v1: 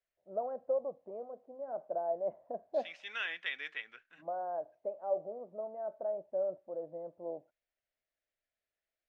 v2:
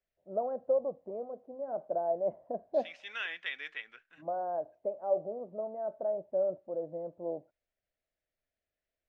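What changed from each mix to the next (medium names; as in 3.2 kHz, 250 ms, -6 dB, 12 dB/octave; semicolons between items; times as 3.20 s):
first voice: add bass shelf 480 Hz +9 dB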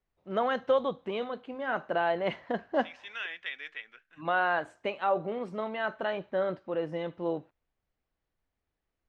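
first voice: remove four-pole ladder low-pass 680 Hz, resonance 70%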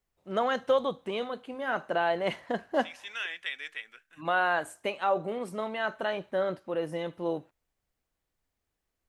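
master: remove distance through air 170 m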